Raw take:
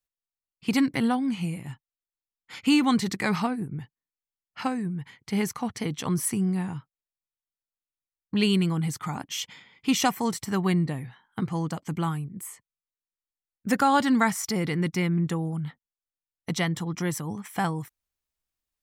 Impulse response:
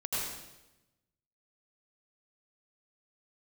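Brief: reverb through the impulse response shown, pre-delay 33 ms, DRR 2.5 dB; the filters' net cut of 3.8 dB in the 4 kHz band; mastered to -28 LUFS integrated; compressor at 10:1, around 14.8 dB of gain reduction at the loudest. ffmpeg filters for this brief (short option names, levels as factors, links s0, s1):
-filter_complex "[0:a]equalizer=f=4000:t=o:g=-5.5,acompressor=threshold=0.0224:ratio=10,asplit=2[s0][s1];[1:a]atrim=start_sample=2205,adelay=33[s2];[s1][s2]afir=irnorm=-1:irlink=0,volume=0.398[s3];[s0][s3]amix=inputs=2:normalize=0,volume=2.66"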